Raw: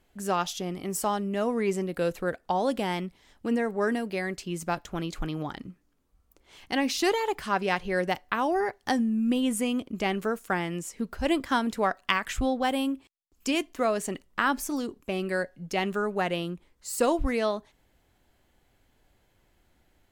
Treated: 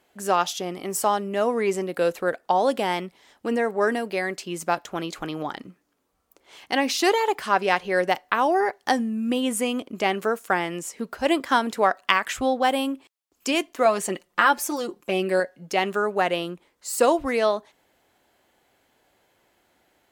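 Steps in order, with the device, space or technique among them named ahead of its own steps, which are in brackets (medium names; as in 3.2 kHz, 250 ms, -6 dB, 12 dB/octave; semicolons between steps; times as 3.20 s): 13.85–15.40 s: comb 5.7 ms, depth 62%; filter by subtraction (in parallel: low-pass 590 Hz 12 dB/octave + polarity flip); on the sum: trim +4.5 dB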